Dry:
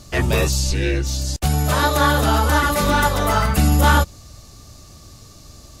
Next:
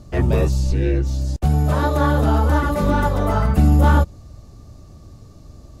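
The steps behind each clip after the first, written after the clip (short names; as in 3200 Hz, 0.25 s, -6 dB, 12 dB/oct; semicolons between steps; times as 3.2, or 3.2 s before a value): tilt shelf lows +8.5 dB, about 1300 Hz; gain -6 dB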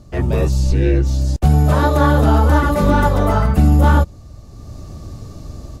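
AGC gain up to 11 dB; gain -1 dB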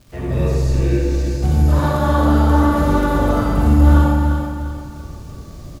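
crackle 240/s -33 dBFS; feedback echo 0.346 s, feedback 37%, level -7 dB; reverb RT60 1.3 s, pre-delay 42 ms, DRR -4 dB; gain -8.5 dB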